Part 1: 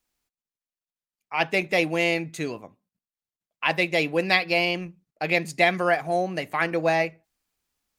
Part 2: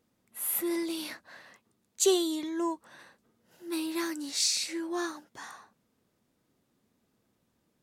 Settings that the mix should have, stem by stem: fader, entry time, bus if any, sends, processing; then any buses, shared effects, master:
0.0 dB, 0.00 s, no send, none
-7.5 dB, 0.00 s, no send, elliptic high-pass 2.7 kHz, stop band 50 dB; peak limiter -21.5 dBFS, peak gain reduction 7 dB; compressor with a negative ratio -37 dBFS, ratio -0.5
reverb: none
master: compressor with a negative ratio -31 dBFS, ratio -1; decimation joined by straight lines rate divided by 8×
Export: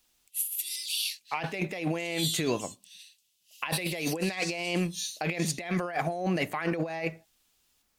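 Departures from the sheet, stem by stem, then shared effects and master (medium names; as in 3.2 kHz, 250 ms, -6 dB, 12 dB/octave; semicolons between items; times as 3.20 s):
stem 2 -7.5 dB -> +2.0 dB; master: missing decimation joined by straight lines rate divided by 8×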